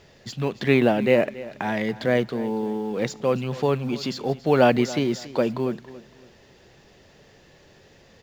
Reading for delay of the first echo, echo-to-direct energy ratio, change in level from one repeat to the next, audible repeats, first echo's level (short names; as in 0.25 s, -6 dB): 0.28 s, -17.0 dB, -10.5 dB, 2, -17.5 dB